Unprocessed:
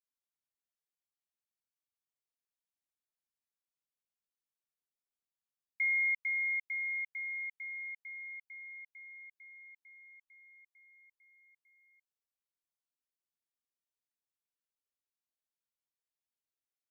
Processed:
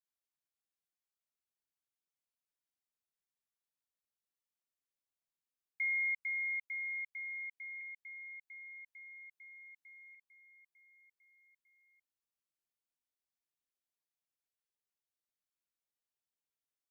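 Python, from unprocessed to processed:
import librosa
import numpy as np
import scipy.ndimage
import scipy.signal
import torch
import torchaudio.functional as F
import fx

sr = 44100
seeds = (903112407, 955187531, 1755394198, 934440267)

y = fx.band_squash(x, sr, depth_pct=40, at=(7.81, 10.15))
y = y * librosa.db_to_amplitude(-3.5)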